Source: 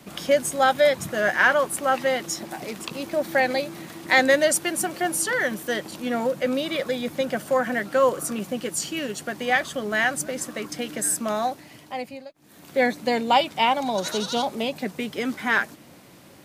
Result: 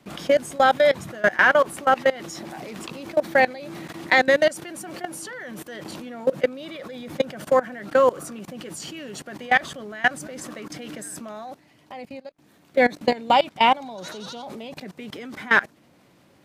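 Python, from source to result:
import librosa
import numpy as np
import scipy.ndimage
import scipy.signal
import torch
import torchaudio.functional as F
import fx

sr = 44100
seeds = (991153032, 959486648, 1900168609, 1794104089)

y = fx.high_shelf(x, sr, hz=6600.0, db=-9.5)
y = fx.level_steps(y, sr, step_db=21)
y = y * librosa.db_to_amplitude(6.0)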